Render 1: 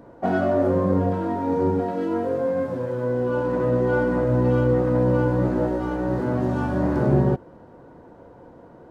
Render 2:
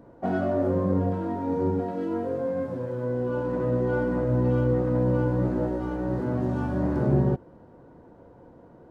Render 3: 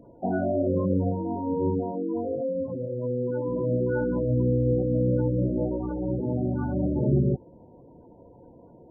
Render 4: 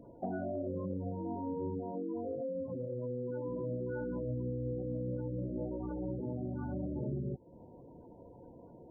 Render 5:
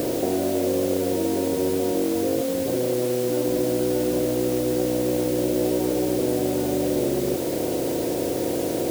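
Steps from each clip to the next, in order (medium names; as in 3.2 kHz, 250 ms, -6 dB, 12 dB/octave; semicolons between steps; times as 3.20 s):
bass shelf 430 Hz +5 dB; trim -7 dB
spectral gate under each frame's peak -15 dB strong
compression 4:1, threshold -33 dBFS, peak gain reduction 13 dB; trim -3 dB
spectral levelling over time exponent 0.2; FFT filter 190 Hz 0 dB, 360 Hz +14 dB, 1.6 kHz -6 dB; word length cut 6-bit, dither triangular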